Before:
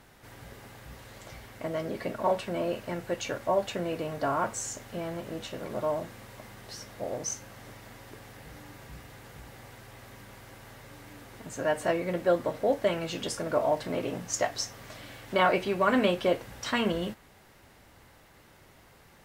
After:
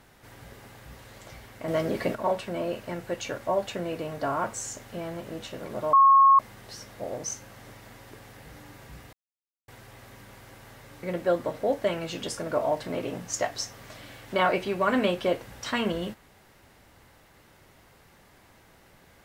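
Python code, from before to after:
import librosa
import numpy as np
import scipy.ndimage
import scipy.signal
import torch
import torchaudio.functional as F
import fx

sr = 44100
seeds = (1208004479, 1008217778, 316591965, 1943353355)

y = fx.edit(x, sr, fx.clip_gain(start_s=1.68, length_s=0.47, db=6.0),
    fx.bleep(start_s=5.93, length_s=0.46, hz=1090.0, db=-13.0),
    fx.silence(start_s=9.13, length_s=0.55),
    fx.cut(start_s=11.03, length_s=1.0), tone=tone)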